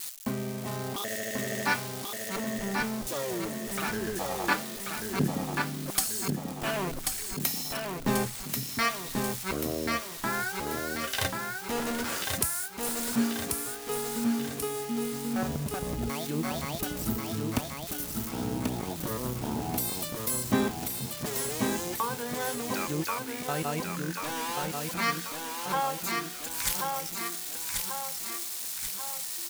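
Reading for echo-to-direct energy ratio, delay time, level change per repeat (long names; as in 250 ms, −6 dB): −2.5 dB, 1,087 ms, −5.5 dB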